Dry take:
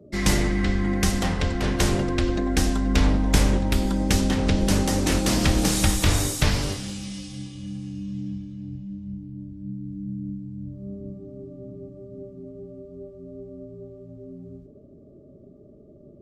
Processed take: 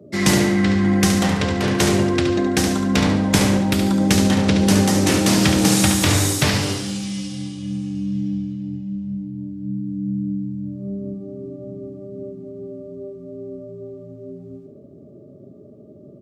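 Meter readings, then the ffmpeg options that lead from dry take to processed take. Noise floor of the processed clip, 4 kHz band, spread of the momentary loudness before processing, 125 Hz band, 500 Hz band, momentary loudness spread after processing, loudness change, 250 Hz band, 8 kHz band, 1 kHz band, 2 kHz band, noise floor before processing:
−44 dBFS, +6.0 dB, 20 LU, +4.0 dB, +6.5 dB, 19 LU, +5.0 dB, +7.5 dB, +6.0 dB, +5.5 dB, +6.0 dB, −49 dBFS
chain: -af "highpass=frequency=96:width=0.5412,highpass=frequency=96:width=1.3066,aecho=1:1:71|142|213|284:0.447|0.152|0.0516|0.0176,volume=5dB"

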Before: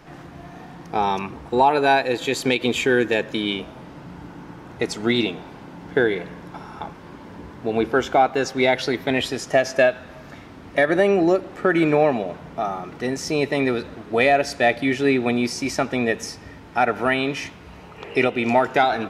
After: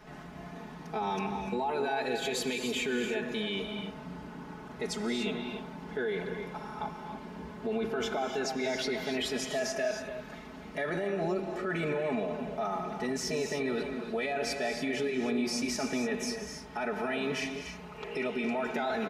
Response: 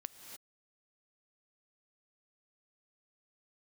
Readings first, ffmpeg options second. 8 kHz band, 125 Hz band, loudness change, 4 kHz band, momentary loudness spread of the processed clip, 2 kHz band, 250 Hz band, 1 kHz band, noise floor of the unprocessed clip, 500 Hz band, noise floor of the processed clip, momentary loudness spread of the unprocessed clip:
−4.5 dB, −10.5 dB, −12.0 dB, −8.5 dB, 11 LU, −12.0 dB, −10.5 dB, −14.0 dB, −42 dBFS, −12.0 dB, −46 dBFS, 21 LU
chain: -filter_complex "[0:a]aecho=1:1:4.7:0.92,alimiter=limit=-17.5dB:level=0:latency=1:release=13[link_01];[1:a]atrim=start_sample=2205[link_02];[link_01][link_02]afir=irnorm=-1:irlink=0,volume=-3dB"

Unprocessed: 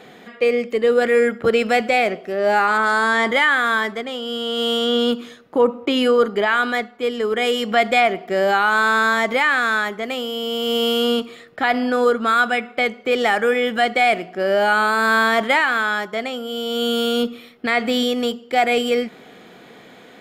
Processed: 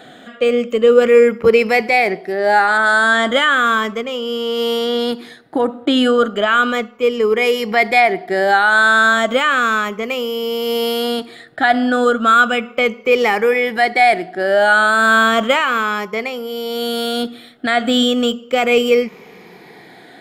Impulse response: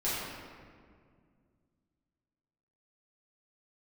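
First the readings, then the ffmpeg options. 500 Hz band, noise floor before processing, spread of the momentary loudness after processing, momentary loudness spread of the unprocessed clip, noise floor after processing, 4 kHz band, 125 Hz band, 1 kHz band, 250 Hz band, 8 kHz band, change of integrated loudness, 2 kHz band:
+4.0 dB, −45 dBFS, 10 LU, 8 LU, −41 dBFS, +2.0 dB, can't be measured, +3.5 dB, +3.5 dB, +4.0 dB, +3.5 dB, +4.0 dB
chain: -af "afftfilt=real='re*pow(10,10/40*sin(2*PI*(0.82*log(max(b,1)*sr/1024/100)/log(2)-(-0.34)*(pts-256)/sr)))':imag='im*pow(10,10/40*sin(2*PI*(0.82*log(max(b,1)*sr/1024/100)/log(2)-(-0.34)*(pts-256)/sr)))':win_size=1024:overlap=0.75,volume=2dB"

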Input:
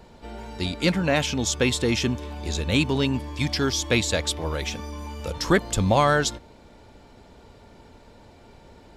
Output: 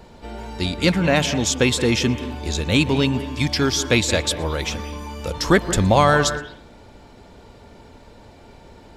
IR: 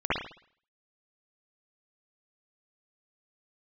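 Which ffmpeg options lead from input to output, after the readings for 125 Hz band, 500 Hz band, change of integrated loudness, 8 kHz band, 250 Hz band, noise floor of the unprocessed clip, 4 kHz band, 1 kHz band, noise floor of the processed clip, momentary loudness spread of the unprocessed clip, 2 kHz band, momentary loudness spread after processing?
+4.0 dB, +4.0 dB, +4.0 dB, +4.0 dB, +4.5 dB, −51 dBFS, +4.0 dB, +4.5 dB, −46 dBFS, 13 LU, +4.5 dB, 14 LU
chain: -filter_complex "[0:a]asplit=2[link_01][link_02];[1:a]atrim=start_sample=2205,adelay=117[link_03];[link_02][link_03]afir=irnorm=-1:irlink=0,volume=-24.5dB[link_04];[link_01][link_04]amix=inputs=2:normalize=0,volume=4dB"

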